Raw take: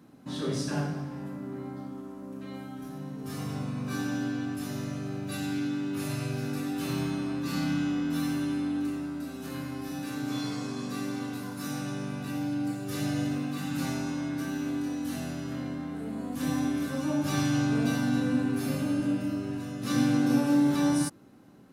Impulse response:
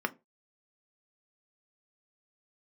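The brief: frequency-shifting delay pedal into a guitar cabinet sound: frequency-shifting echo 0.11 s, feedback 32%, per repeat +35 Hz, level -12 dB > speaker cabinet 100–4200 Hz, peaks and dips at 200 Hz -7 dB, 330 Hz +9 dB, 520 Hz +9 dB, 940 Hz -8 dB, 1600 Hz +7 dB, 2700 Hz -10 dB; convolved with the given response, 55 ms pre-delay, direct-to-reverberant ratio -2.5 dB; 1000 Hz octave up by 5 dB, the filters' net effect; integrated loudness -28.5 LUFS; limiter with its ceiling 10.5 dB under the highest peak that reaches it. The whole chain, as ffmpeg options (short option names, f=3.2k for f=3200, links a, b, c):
-filter_complex "[0:a]equalizer=f=1k:t=o:g=9,alimiter=limit=-23dB:level=0:latency=1,asplit=2[a][b];[1:a]atrim=start_sample=2205,adelay=55[c];[b][c]afir=irnorm=-1:irlink=0,volume=-4.5dB[d];[a][d]amix=inputs=2:normalize=0,asplit=4[e][f][g][h];[f]adelay=110,afreqshift=35,volume=-12dB[i];[g]adelay=220,afreqshift=70,volume=-21.9dB[j];[h]adelay=330,afreqshift=105,volume=-31.8dB[k];[e][i][j][k]amix=inputs=4:normalize=0,highpass=100,equalizer=f=200:t=q:w=4:g=-7,equalizer=f=330:t=q:w=4:g=9,equalizer=f=520:t=q:w=4:g=9,equalizer=f=940:t=q:w=4:g=-8,equalizer=f=1.6k:t=q:w=4:g=7,equalizer=f=2.7k:t=q:w=4:g=-10,lowpass=f=4.2k:w=0.5412,lowpass=f=4.2k:w=1.3066,volume=-6dB"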